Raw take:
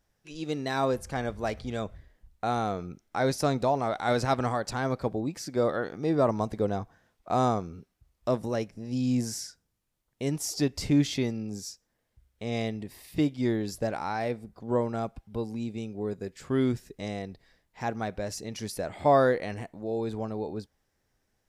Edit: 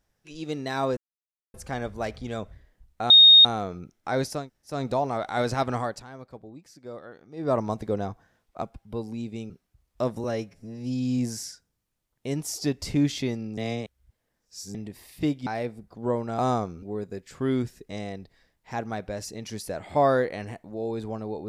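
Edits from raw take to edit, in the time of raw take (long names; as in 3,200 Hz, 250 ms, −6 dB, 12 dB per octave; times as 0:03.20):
0:00.97: splice in silence 0.57 s
0:02.53: insert tone 3,710 Hz −9 dBFS 0.35 s
0:03.46: splice in room tone 0.37 s, crossfade 0.24 s
0:04.59–0:06.23: duck −14 dB, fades 0.16 s
0:07.33–0:07.77: swap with 0:15.04–0:15.92
0:08.51–0:09.14: time-stretch 1.5×
0:11.53–0:12.70: reverse
0:13.42–0:14.12: remove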